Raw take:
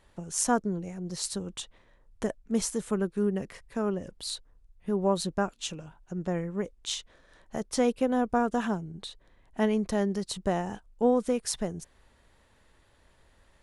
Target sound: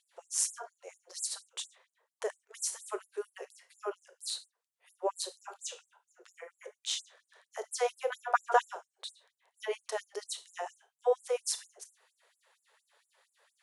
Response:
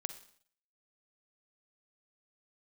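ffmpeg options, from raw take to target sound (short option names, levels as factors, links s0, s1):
-filter_complex "[0:a]asettb=1/sr,asplit=3[s0][s1][s2];[s0]atrim=end=8.104[s3];[s1]atrim=start=8.1:end=8.62,asetpts=PTS-STARTPTS,afade=t=in:d=0.004:c=qsin,afade=t=out:st=0.516:d=0.004:c=qsin,equalizer=f=1300:w=0.42:g=13[s4];[s2]atrim=start=8.616[s5];[s3][s4]acrossfade=d=0.004:c1=hsin:c2=qsin[s6];[s6][s5]acrossfade=d=0.004:c1=qsin:c2=hsin[s7];[1:a]atrim=start_sample=2205,afade=t=out:st=0.29:d=0.01,atrim=end_sample=13230,asetrate=74970,aresample=44100[s8];[s7][s8]afir=irnorm=-1:irlink=0,afftfilt=real='re*gte(b*sr/1024,350*pow(7300/350,0.5+0.5*sin(2*PI*4.3*pts/sr)))':imag='im*gte(b*sr/1024,350*pow(7300/350,0.5+0.5*sin(2*PI*4.3*pts/sr)))':win_size=1024:overlap=0.75,volume=1.68"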